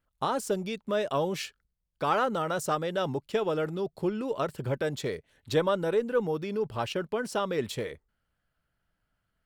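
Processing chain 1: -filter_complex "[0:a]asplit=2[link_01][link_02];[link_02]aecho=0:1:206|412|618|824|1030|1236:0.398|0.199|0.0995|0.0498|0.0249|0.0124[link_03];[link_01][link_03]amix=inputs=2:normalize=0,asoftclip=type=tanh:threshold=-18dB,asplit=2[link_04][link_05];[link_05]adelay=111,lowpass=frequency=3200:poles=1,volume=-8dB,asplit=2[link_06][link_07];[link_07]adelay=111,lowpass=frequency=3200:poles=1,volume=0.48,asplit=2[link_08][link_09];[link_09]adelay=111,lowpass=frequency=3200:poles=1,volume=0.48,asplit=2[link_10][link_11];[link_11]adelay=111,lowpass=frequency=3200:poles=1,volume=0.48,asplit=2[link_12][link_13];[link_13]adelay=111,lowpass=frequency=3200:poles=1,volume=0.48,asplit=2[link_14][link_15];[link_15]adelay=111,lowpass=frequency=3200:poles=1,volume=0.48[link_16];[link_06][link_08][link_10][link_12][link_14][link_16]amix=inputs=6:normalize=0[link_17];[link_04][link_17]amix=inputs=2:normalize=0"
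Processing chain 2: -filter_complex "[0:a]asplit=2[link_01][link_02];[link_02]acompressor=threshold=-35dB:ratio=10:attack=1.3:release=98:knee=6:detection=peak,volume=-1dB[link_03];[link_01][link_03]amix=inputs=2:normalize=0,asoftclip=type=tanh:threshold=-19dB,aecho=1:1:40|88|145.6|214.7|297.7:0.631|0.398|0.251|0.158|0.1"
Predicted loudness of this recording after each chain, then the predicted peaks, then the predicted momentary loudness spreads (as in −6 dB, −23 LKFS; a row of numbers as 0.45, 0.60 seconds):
−30.0, −27.5 LKFS; −16.0, −13.5 dBFS; 7, 5 LU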